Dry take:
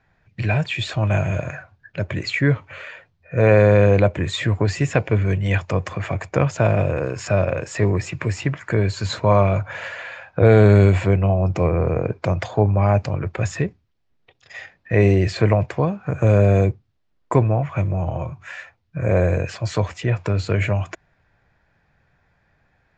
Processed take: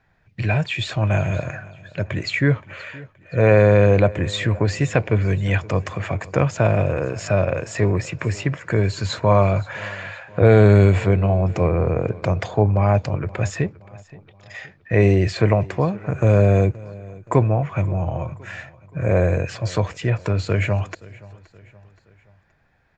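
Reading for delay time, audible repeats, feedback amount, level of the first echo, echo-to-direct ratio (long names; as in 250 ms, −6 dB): 523 ms, 3, 48%, −21.5 dB, −20.5 dB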